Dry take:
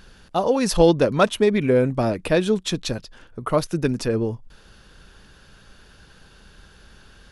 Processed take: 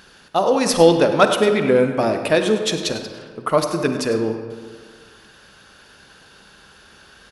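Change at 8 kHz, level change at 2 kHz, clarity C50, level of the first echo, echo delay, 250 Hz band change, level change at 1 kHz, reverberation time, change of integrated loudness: +5.0 dB, +5.0 dB, 6.5 dB, -14.0 dB, 101 ms, +1.0 dB, +5.0 dB, 1.7 s, +3.0 dB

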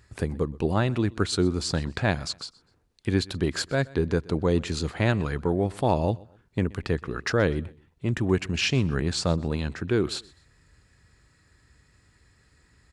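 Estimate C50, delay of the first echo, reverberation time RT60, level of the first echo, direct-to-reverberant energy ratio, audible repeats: no reverb, 125 ms, no reverb, -23.0 dB, no reverb, 2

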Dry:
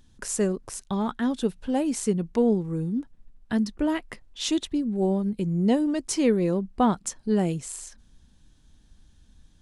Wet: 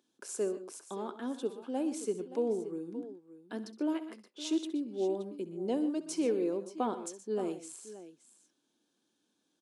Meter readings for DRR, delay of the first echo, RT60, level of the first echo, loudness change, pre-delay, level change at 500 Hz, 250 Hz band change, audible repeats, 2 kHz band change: no reverb, 66 ms, no reverb, -16.0 dB, -9.5 dB, no reverb, -6.5 dB, -10.5 dB, 3, -13.0 dB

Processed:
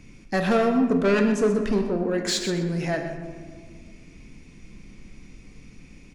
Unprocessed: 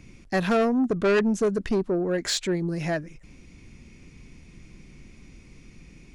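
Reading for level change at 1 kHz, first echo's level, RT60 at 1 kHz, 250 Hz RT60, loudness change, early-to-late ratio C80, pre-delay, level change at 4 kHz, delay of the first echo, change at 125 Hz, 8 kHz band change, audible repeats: +1.5 dB, -11.5 dB, 1.6 s, 2.6 s, +1.5 dB, 7.0 dB, 4 ms, +1.0 dB, 126 ms, +2.0 dB, +1.0 dB, 1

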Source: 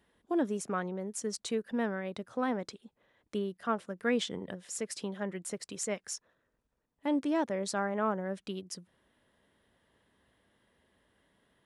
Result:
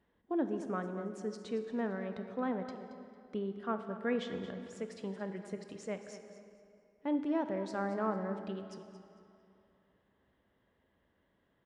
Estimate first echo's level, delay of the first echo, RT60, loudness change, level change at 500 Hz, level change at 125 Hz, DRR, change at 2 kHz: -13.0 dB, 225 ms, 2.8 s, -3.0 dB, -2.5 dB, -1.5 dB, 6.5 dB, -5.5 dB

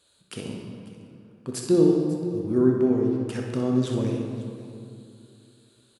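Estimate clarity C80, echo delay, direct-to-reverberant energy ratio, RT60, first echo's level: 3.0 dB, 63 ms, -0.5 dB, 2.5 s, -7.5 dB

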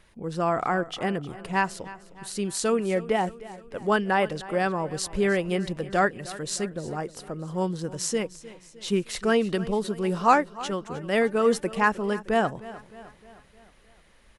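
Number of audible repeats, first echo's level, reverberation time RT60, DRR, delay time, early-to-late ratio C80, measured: 4, -17.5 dB, no reverb, no reverb, 308 ms, no reverb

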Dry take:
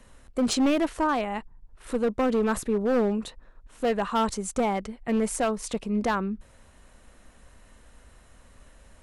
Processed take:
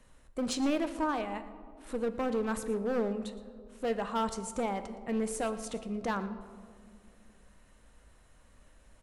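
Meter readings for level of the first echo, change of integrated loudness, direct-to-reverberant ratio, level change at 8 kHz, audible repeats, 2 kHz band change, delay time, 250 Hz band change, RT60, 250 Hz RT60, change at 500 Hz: -18.0 dB, -7.0 dB, 9.0 dB, -7.0 dB, 1, -7.0 dB, 116 ms, -7.5 dB, 2.1 s, 2.9 s, -6.5 dB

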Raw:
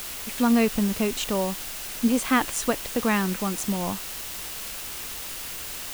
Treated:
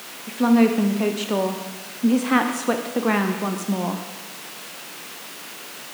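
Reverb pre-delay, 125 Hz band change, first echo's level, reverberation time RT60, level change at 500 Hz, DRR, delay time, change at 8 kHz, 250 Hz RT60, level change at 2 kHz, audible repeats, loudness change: 6 ms, +2.5 dB, no echo, 1.2 s, +4.0 dB, 4.5 dB, no echo, -4.0 dB, 1.2 s, +2.5 dB, no echo, +4.0 dB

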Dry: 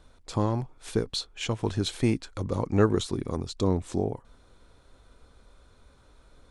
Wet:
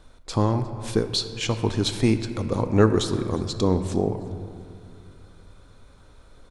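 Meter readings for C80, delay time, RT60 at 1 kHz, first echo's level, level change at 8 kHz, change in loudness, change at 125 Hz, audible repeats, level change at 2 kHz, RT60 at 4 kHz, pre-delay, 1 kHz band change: 10.5 dB, 356 ms, 2.2 s, -22.5 dB, +5.0 dB, +4.5 dB, +4.5 dB, 2, +4.5 dB, 1.6 s, 3 ms, +4.5 dB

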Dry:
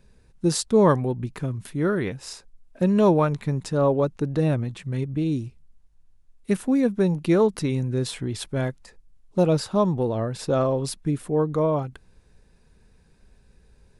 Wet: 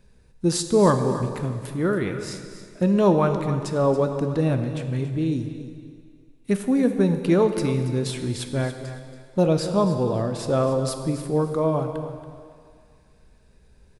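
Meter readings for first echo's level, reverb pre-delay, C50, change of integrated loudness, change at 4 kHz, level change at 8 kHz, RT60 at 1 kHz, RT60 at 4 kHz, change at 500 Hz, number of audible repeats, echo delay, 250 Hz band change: -13.0 dB, 11 ms, 7.0 dB, +0.5 dB, +1.0 dB, +1.0 dB, 2.2 s, 2.1 s, +0.5 dB, 2, 280 ms, +1.0 dB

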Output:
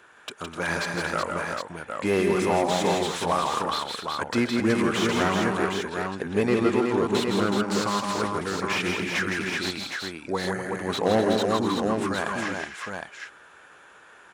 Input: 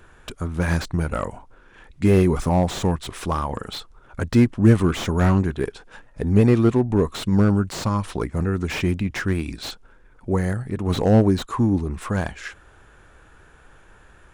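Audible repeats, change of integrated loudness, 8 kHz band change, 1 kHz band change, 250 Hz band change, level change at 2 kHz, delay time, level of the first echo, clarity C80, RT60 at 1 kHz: 5, -4.0 dB, +2.5 dB, +3.0 dB, -5.5 dB, +4.5 dB, 129 ms, -14.0 dB, no reverb, no reverb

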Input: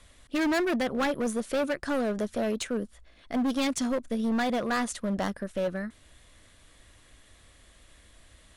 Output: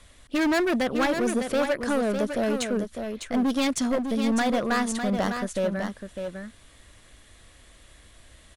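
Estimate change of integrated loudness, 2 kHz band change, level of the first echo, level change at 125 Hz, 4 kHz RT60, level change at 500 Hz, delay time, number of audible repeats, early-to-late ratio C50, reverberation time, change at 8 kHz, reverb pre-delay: +3.5 dB, +4.0 dB, -7.0 dB, +4.0 dB, no reverb, +4.0 dB, 603 ms, 1, no reverb, no reverb, +4.0 dB, no reverb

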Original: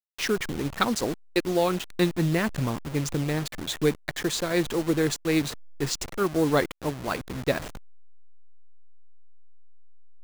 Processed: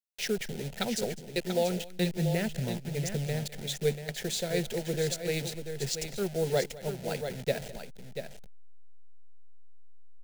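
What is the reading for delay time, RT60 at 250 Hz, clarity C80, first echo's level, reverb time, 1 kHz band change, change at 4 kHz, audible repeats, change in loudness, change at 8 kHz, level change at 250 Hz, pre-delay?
205 ms, no reverb, no reverb, -19.5 dB, no reverb, -10.0 dB, -3.5 dB, 2, -5.5 dB, -2.5 dB, -8.0 dB, no reverb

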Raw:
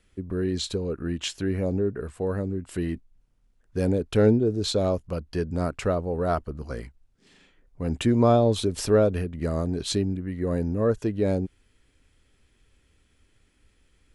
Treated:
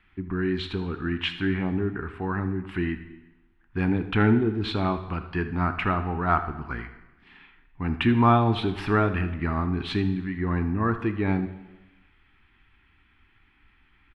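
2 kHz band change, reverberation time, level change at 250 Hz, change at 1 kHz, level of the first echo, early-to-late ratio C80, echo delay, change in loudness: +9.5 dB, 1.1 s, +1.0 dB, +6.0 dB, -15.5 dB, 14.0 dB, 78 ms, -0.5 dB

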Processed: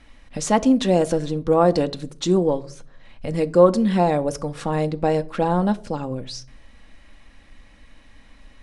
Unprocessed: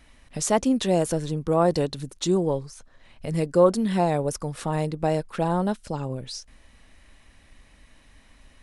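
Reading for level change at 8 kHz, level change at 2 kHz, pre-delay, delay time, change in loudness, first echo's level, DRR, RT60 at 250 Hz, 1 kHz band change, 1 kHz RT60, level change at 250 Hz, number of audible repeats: -1.0 dB, +3.5 dB, 4 ms, no echo, +4.0 dB, no echo, 9.5 dB, 0.70 s, +4.0 dB, 0.45 s, +4.5 dB, no echo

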